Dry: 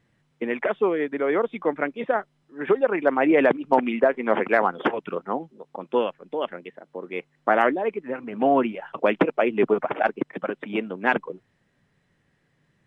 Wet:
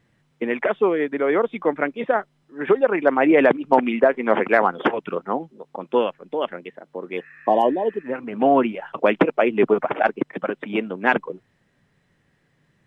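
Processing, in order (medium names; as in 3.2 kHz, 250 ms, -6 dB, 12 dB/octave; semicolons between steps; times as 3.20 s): spectral replace 7.19–8.01 s, 1.1–2.8 kHz after; trim +3 dB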